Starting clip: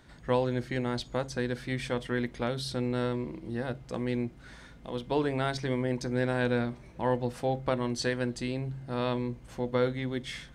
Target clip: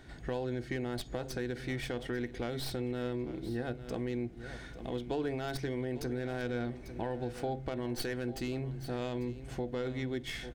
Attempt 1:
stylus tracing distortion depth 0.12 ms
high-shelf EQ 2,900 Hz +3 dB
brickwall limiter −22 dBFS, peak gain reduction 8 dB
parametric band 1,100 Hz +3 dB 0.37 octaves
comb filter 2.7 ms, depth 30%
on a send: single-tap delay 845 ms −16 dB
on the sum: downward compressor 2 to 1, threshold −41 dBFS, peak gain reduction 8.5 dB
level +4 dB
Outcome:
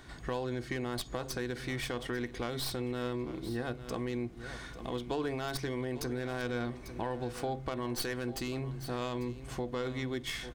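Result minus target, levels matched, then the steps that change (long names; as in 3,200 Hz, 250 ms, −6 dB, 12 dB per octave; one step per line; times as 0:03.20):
8,000 Hz band +5.0 dB; 1,000 Hz band +2.5 dB
change: high-shelf EQ 2,900 Hz −4 dB
change: parametric band 1,100 Hz −8 dB 0.37 octaves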